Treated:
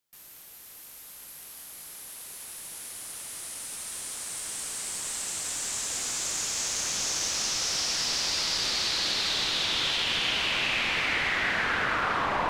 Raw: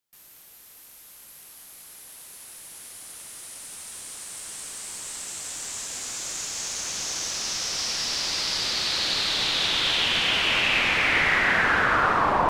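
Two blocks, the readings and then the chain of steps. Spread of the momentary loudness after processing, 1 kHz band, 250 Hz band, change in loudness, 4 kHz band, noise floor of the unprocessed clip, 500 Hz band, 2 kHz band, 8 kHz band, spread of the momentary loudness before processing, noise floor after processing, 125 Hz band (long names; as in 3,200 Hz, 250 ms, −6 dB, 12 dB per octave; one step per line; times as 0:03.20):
17 LU, −6.0 dB, −5.0 dB, −4.0 dB, −2.5 dB, −50 dBFS, −5.5 dB, −5.5 dB, +1.0 dB, 20 LU, −48 dBFS, −5.0 dB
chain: downward compressor, threshold −27 dBFS, peak gain reduction 9.5 dB
feedback delay with all-pass diffusion 484 ms, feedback 67%, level −9 dB
level +1.5 dB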